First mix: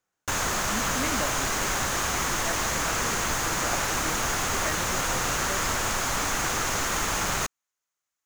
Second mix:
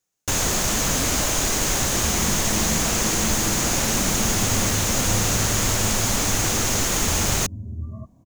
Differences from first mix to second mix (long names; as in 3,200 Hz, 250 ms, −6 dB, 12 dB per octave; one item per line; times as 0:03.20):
first sound +8.0 dB
second sound: unmuted
master: add parametric band 1,300 Hz −10.5 dB 1.8 octaves